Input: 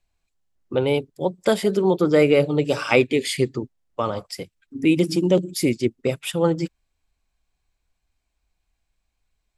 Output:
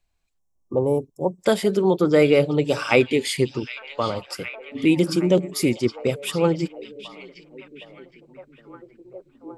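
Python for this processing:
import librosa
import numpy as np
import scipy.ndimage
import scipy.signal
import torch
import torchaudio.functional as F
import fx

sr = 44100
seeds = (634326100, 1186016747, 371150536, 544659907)

y = fx.spec_box(x, sr, start_s=0.39, length_s=1.0, low_hz=1200.0, high_hz=5200.0, gain_db=-28)
y = fx.echo_stepped(y, sr, ms=765, hz=3700.0, octaves=-0.7, feedback_pct=70, wet_db=-8.5)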